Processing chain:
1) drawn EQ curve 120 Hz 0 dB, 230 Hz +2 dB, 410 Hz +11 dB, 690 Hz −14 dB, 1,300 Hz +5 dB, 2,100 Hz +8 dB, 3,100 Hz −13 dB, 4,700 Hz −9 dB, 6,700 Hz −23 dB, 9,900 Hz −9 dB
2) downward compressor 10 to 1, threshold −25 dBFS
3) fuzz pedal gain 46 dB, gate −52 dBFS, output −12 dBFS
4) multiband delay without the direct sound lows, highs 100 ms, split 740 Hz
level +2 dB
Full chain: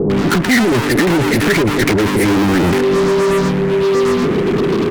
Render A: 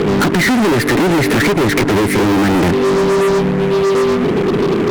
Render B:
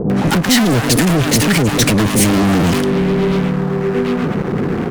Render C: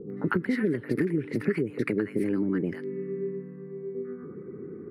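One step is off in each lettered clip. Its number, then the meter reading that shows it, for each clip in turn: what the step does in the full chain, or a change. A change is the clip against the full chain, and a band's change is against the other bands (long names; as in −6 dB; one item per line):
4, echo-to-direct ratio 8.5 dB to none audible
1, change in momentary loudness spread +3 LU
3, change in crest factor +5.0 dB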